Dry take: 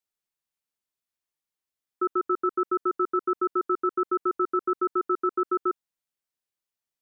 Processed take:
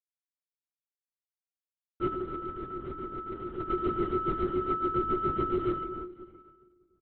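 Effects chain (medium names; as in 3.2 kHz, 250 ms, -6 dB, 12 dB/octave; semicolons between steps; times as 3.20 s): companding laws mixed up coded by A; peaking EQ 850 Hz -7.5 dB 1.7 oct; comb 3.6 ms, depth 38%; 2.07–3.60 s: compressor with a negative ratio -34 dBFS, ratio -0.5; feedback delay 178 ms, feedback 54%, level -15.5 dB; reverberation RT60 1.7 s, pre-delay 22 ms, DRR 0.5 dB; LPC vocoder at 8 kHz whisper; 4.94–5.69 s: three bands compressed up and down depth 100%; trim -2 dB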